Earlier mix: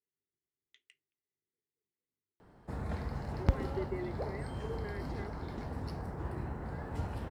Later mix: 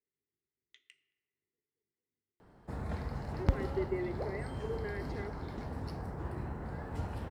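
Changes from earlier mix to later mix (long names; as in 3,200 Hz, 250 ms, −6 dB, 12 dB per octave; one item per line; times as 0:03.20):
background −3.0 dB
reverb: on, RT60 1.8 s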